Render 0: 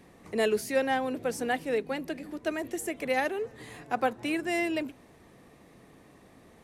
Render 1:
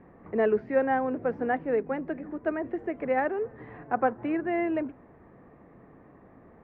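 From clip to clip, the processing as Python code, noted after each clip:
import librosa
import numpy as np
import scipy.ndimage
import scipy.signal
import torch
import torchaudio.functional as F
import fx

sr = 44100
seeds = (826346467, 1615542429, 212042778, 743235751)

y = scipy.signal.sosfilt(scipy.signal.butter(4, 1700.0, 'lowpass', fs=sr, output='sos'), x)
y = y * 10.0 ** (2.5 / 20.0)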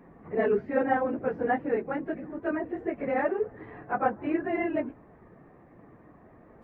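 y = fx.phase_scramble(x, sr, seeds[0], window_ms=50)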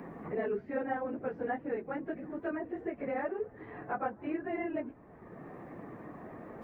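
y = fx.band_squash(x, sr, depth_pct=70)
y = y * 10.0 ** (-7.5 / 20.0)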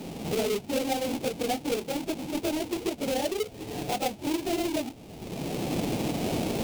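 y = fx.halfwave_hold(x, sr)
y = fx.recorder_agc(y, sr, target_db=-26.0, rise_db_per_s=12.0, max_gain_db=30)
y = fx.band_shelf(y, sr, hz=1400.0, db=-10.5, octaves=1.1)
y = y * 10.0 ** (2.5 / 20.0)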